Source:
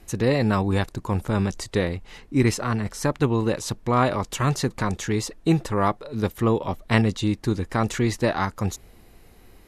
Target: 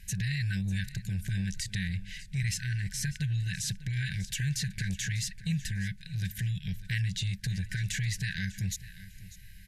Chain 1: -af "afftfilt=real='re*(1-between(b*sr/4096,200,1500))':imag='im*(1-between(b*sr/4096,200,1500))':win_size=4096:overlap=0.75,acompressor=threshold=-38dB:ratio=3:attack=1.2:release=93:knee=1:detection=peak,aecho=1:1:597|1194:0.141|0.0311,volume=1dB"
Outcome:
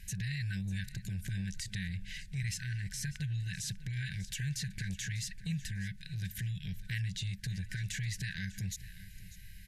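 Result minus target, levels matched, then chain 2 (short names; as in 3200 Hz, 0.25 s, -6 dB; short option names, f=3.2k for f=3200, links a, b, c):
compressor: peak gain reduction +5.5 dB
-af "afftfilt=real='re*(1-between(b*sr/4096,200,1500))':imag='im*(1-between(b*sr/4096,200,1500))':win_size=4096:overlap=0.75,acompressor=threshold=-30dB:ratio=3:attack=1.2:release=93:knee=1:detection=peak,aecho=1:1:597|1194:0.141|0.0311,volume=1dB"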